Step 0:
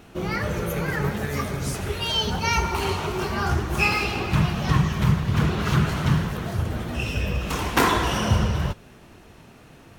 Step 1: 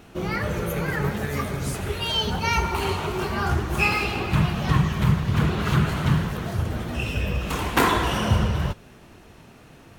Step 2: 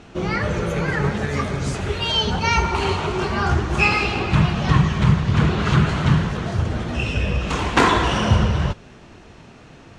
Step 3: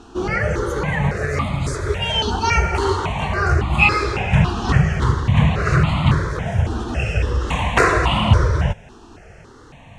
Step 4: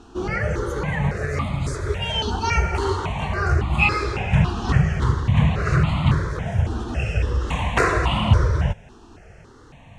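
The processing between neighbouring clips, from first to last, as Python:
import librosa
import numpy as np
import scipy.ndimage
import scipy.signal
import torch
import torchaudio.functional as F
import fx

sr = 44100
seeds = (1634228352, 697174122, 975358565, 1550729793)

y1 = fx.dynamic_eq(x, sr, hz=5600.0, q=2.9, threshold_db=-48.0, ratio=4.0, max_db=-5)
y2 = scipy.signal.sosfilt(scipy.signal.butter(4, 7500.0, 'lowpass', fs=sr, output='sos'), y1)
y2 = F.gain(torch.from_numpy(y2), 4.0).numpy()
y3 = fx.phaser_held(y2, sr, hz=3.6, low_hz=570.0, high_hz=1600.0)
y3 = F.gain(torch.from_numpy(y3), 4.5).numpy()
y4 = fx.low_shelf(y3, sr, hz=210.0, db=3.0)
y4 = F.gain(torch.from_numpy(y4), -4.5).numpy()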